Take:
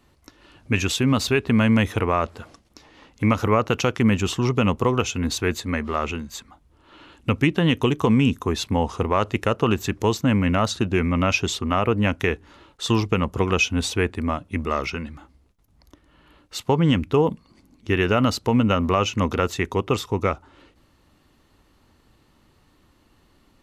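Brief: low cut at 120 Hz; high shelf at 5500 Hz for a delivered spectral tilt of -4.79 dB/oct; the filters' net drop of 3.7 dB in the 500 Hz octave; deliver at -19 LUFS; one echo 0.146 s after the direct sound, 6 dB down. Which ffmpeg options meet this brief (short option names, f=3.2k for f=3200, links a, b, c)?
-af "highpass=120,equalizer=f=500:t=o:g=-4.5,highshelf=f=5.5k:g=-5,aecho=1:1:146:0.501,volume=4dB"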